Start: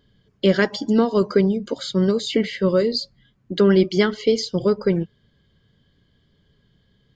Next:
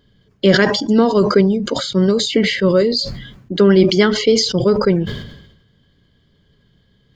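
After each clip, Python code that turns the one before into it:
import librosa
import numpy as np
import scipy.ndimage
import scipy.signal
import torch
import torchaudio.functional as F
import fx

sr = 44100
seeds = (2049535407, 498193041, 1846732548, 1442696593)

y = fx.sustainer(x, sr, db_per_s=61.0)
y = F.gain(torch.from_numpy(y), 4.0).numpy()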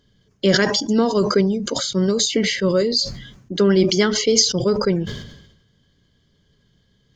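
y = fx.peak_eq(x, sr, hz=6200.0, db=12.0, octaves=0.6)
y = F.gain(torch.from_numpy(y), -4.5).numpy()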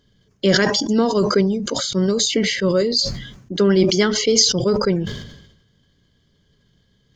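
y = fx.sustainer(x, sr, db_per_s=67.0)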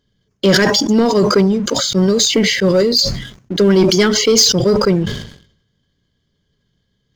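y = fx.leveller(x, sr, passes=2)
y = F.gain(torch.from_numpy(y), -1.5).numpy()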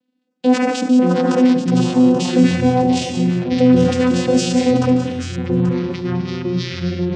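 y = fx.vocoder(x, sr, bands=8, carrier='saw', carrier_hz=252.0)
y = fx.echo_multitap(y, sr, ms=(74, 144, 181, 833), db=(-14.0, -13.0, -10.0, -11.0))
y = fx.echo_pitch(y, sr, ms=396, semitones=-6, count=3, db_per_echo=-6.0)
y = F.gain(torch.from_numpy(y), -1.0).numpy()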